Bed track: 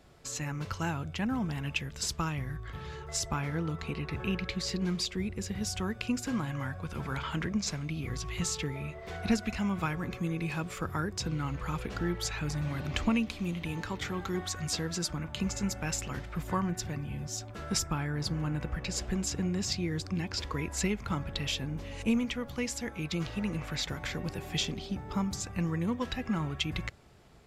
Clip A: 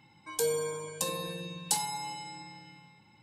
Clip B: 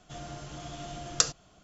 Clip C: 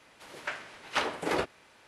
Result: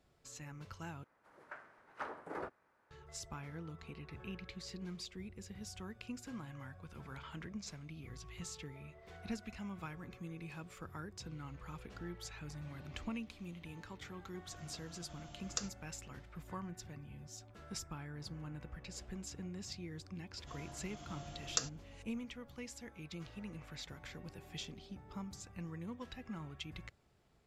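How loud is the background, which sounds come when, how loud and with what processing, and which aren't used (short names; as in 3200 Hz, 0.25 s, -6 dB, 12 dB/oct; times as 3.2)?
bed track -14 dB
1.04 replace with C -14.5 dB + resonant high shelf 2100 Hz -12 dB, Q 1.5
14.37 add B -15 dB
20.37 add B -10.5 dB
not used: A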